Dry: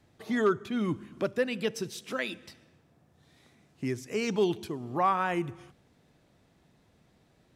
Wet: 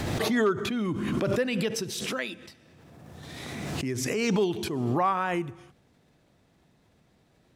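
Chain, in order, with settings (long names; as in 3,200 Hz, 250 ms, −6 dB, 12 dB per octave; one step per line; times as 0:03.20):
background raised ahead of every attack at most 23 dB per second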